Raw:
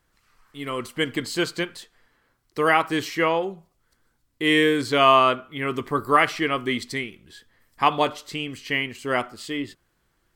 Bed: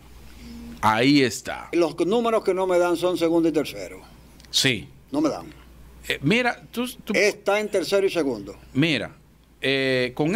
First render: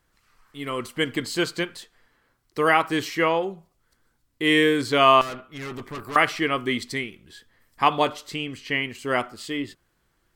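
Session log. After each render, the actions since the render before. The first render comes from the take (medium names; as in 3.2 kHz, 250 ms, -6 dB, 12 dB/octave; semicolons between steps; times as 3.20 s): 5.21–6.16 s: valve stage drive 31 dB, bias 0.6; 8.35–8.82 s: low-pass 9.7 kHz -> 4.5 kHz 6 dB/octave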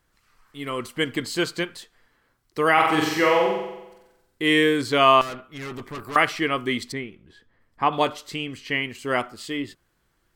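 2.73–4.42 s: flutter echo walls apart 7.8 m, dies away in 0.96 s; 6.92–7.93 s: low-pass 1.3 kHz 6 dB/octave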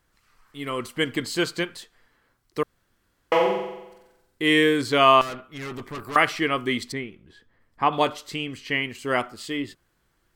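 2.63–3.32 s: room tone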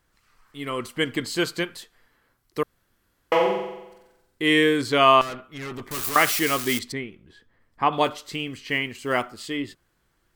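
1.37–3.35 s: peaking EQ 12 kHz +7.5 dB 0.28 oct; 5.91–6.79 s: zero-crossing glitches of -17.5 dBFS; 8.04–9.39 s: block-companded coder 7-bit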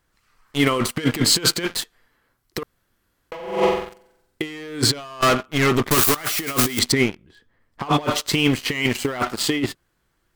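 waveshaping leveller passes 3; compressor with a negative ratio -20 dBFS, ratio -0.5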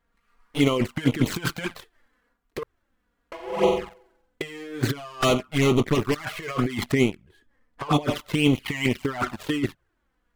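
median filter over 9 samples; touch-sensitive flanger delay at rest 4.3 ms, full sweep at -15.5 dBFS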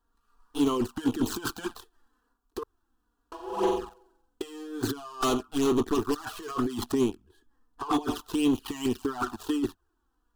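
static phaser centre 570 Hz, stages 6; saturation -16.5 dBFS, distortion -17 dB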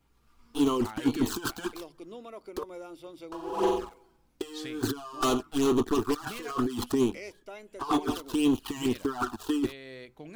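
add bed -23 dB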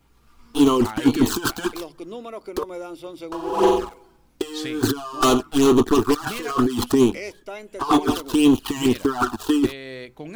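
trim +9 dB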